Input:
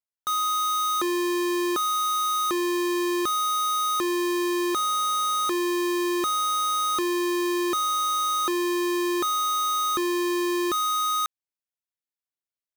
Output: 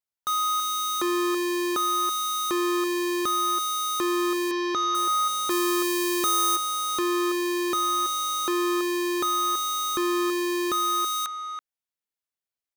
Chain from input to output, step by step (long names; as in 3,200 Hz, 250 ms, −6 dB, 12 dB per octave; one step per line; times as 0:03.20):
0:04.51–0:04.95: Butterworth low-pass 6,200 Hz 96 dB per octave
0:05.50–0:06.56: high-shelf EQ 4,900 Hz +9 dB
far-end echo of a speakerphone 330 ms, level −8 dB